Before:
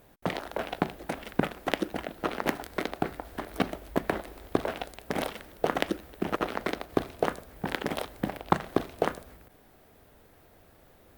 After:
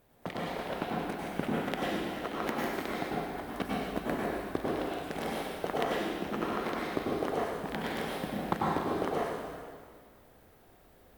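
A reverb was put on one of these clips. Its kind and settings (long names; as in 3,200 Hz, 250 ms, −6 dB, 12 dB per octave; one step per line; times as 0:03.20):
dense smooth reverb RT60 1.9 s, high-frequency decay 0.9×, pre-delay 85 ms, DRR −5.5 dB
level −8.5 dB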